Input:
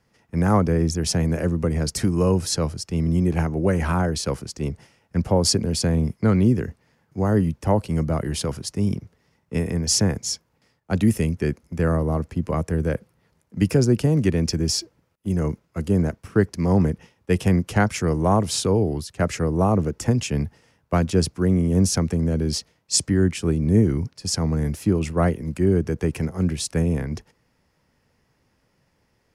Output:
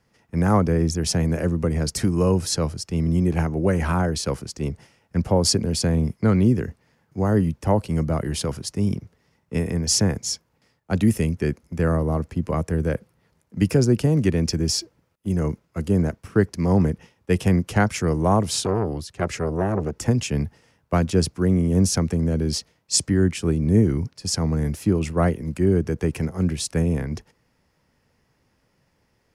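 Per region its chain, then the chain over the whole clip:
18.61–19.96 high shelf 10000 Hz -6.5 dB + core saturation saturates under 560 Hz
whole clip: dry

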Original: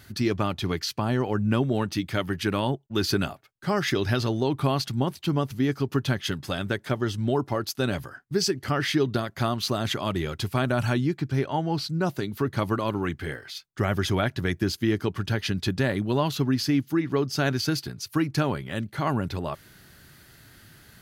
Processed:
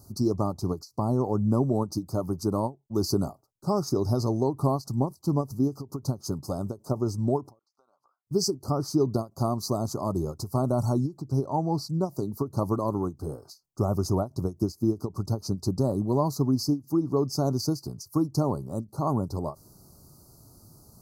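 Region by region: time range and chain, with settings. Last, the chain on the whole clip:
7.59–8.27 ladder band-pass 1600 Hz, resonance 30% + compressor 4:1, threshold -56 dBFS
whole clip: inverse Chebyshev band-stop 1600–3500 Hz, stop band 40 dB; ending taper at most 300 dB/s

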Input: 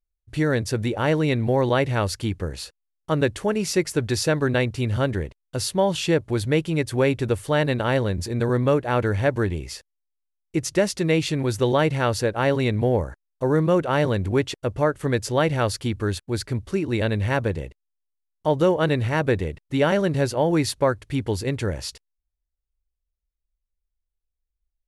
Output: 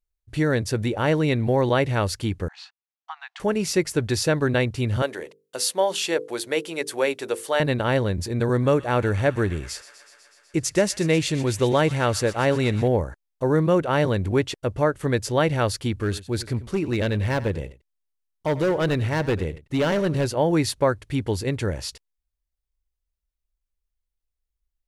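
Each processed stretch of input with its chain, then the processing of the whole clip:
2.48–3.4 compressor 4:1, threshold -23 dBFS + brick-wall FIR high-pass 690 Hz + air absorption 190 m
5.02–7.6 Chebyshev high-pass 480 Hz + high shelf 4500 Hz +6.5 dB + notches 50/100/150/200/250/300/350/400/450/500 Hz
8.48–12.88 bell 7600 Hz +4.5 dB 0.73 oct + thin delay 0.124 s, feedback 77%, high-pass 1500 Hz, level -15 dB
15.97–20.25 overloaded stage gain 17.5 dB + echo 92 ms -16.5 dB
whole clip: dry

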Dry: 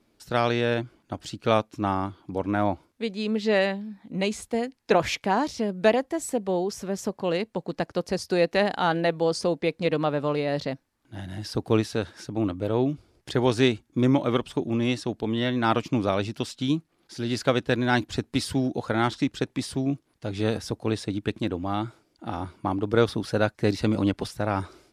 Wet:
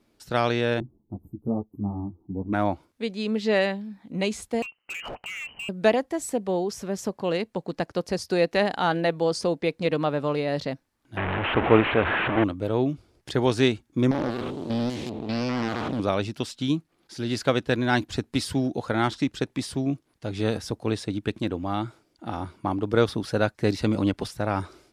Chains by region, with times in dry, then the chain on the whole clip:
0.8–2.53 inverse Chebyshev band-stop 2200–5300 Hz, stop band 80 dB + comb 0.9 ms, depth 69% + ensemble effect
4.62–5.69 inverted band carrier 3000 Hz + compressor 4:1, threshold -30 dBFS + overloaded stage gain 31.5 dB
11.17–12.44 delta modulation 16 kbps, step -24 dBFS + bell 1000 Hz +8.5 dB 3 oct
14.11–16 stepped spectrum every 0.2 s + Doppler distortion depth 0.62 ms
whole clip: dry

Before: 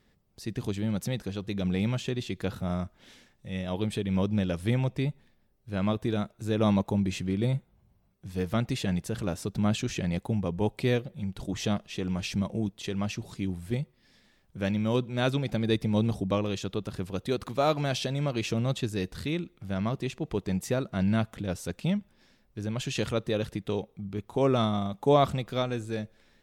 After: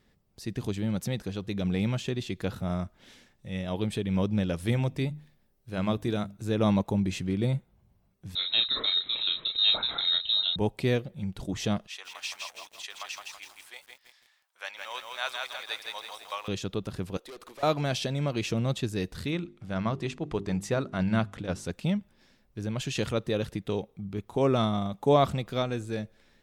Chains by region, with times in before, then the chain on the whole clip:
4.58–6.37 high shelf 5100 Hz +4.5 dB + notches 50/100/150/200/250/300 Hz
8.35–10.56 inverted band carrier 3900 Hz + doubler 33 ms -5.5 dB + echo 0.619 s -17 dB
11.87–16.48 HPF 850 Hz 24 dB/oct + lo-fi delay 0.165 s, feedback 55%, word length 9-bit, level -3 dB
17.17–17.63 HPF 350 Hz 24 dB/oct + tube stage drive 42 dB, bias 0.3
19.31–21.67 LPF 9200 Hz + notches 50/100/150/200/250/300/350/400 Hz + dynamic EQ 1200 Hz, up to +4 dB, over -48 dBFS, Q 1.2
whole clip: dry

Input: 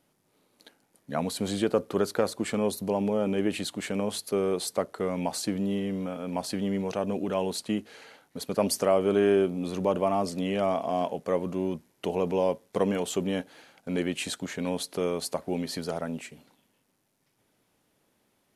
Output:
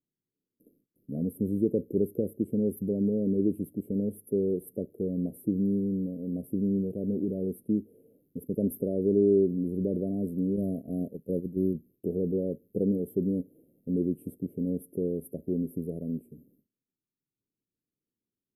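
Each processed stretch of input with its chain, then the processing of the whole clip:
10.56–11.74 gate -31 dBFS, range -10 dB + tone controls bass +3 dB, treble +10 dB
whole clip: gate with hold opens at -51 dBFS; inverse Chebyshev band-stop 1000–7100 Hz, stop band 50 dB; bell 900 Hz -14 dB 0.57 oct; gain +2.5 dB

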